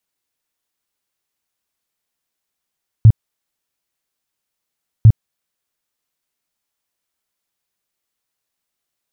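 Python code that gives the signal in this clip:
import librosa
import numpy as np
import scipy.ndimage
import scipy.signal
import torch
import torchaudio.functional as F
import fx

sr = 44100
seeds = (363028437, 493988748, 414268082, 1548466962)

y = fx.tone_burst(sr, hz=110.0, cycles=6, every_s=2.0, bursts=2, level_db=-2.0)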